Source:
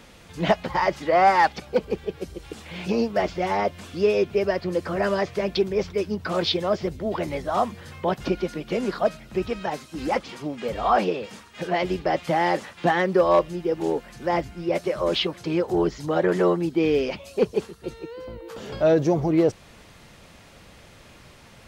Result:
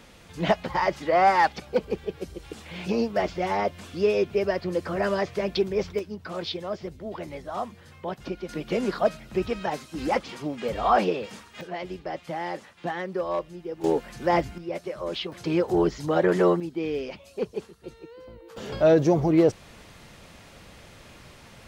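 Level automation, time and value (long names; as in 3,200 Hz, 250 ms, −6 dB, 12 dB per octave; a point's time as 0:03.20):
−2 dB
from 0:05.99 −8.5 dB
from 0:08.49 −0.5 dB
from 0:11.61 −10 dB
from 0:13.84 +1.5 dB
from 0:14.58 −8 dB
from 0:15.32 0 dB
from 0:16.60 −8 dB
from 0:18.57 +0.5 dB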